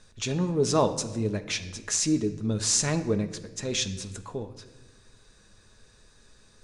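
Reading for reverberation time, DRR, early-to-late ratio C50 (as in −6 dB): 1.3 s, 7.0 dB, 13.0 dB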